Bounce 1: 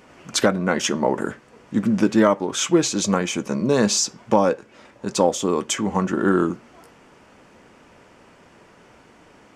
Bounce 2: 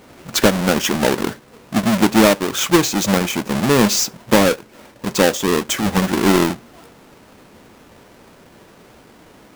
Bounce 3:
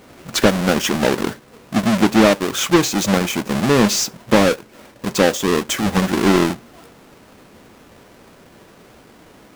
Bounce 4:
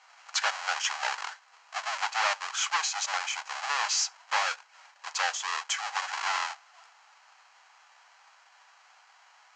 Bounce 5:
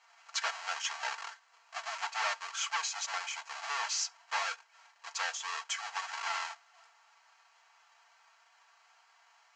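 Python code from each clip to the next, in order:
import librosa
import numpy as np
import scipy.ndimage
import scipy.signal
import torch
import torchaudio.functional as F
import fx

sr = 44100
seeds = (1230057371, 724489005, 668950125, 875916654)

y1 = fx.halfwave_hold(x, sr)
y2 = fx.notch(y1, sr, hz=900.0, q=29.0)
y2 = fx.slew_limit(y2, sr, full_power_hz=1200.0)
y3 = scipy.signal.sosfilt(scipy.signal.cheby1(4, 1.0, [790.0, 7100.0], 'bandpass', fs=sr, output='sos'), y2)
y3 = fx.notch(y3, sr, hz=3600.0, q=10.0)
y3 = y3 * librosa.db_to_amplitude(-6.5)
y4 = y3 + 0.67 * np.pad(y3, (int(4.4 * sr / 1000.0), 0))[:len(y3)]
y4 = y4 * librosa.db_to_amplitude(-7.5)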